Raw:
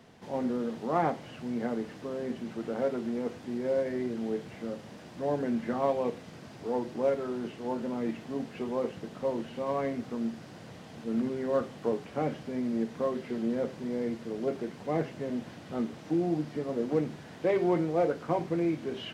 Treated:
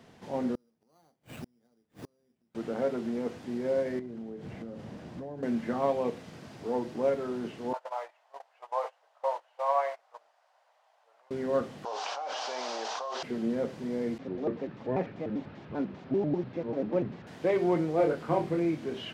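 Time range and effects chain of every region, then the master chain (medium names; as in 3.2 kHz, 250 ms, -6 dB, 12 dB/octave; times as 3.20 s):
0.55–2.55 s: bass shelf 89 Hz +10.5 dB + sample-rate reducer 5.3 kHz + inverted gate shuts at -31 dBFS, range -39 dB
3.99–5.43 s: tilt EQ -2 dB/octave + compression 16:1, threshold -36 dBFS
7.73–11.31 s: elliptic high-pass 590 Hz, stop band 70 dB + gate -45 dBFS, range -21 dB + peaking EQ 880 Hz +11 dB 1.1 oct
11.85–13.23 s: elliptic band-pass 770–6000 Hz, stop band 70 dB + peaking EQ 2 kHz -14.5 dB 0.88 oct + level flattener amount 100%
14.18–17.27 s: distance through air 230 m + vibrato with a chosen wave square 5.1 Hz, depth 250 cents
17.96–18.59 s: peaking EQ 6.1 kHz -4 dB 0.42 oct + doubling 26 ms -4 dB
whole clip: none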